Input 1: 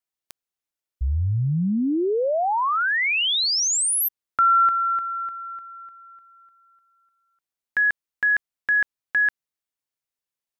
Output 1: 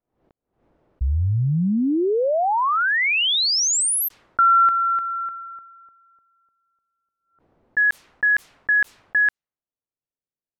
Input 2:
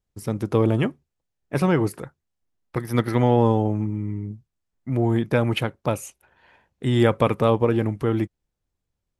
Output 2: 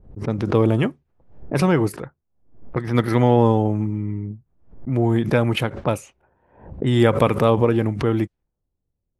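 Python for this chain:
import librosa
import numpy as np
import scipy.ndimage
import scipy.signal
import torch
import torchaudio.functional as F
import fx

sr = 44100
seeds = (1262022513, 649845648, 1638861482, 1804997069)

y = fx.env_lowpass(x, sr, base_hz=550.0, full_db=-19.0)
y = fx.pre_swell(y, sr, db_per_s=110.0)
y = y * 10.0 ** (2.0 / 20.0)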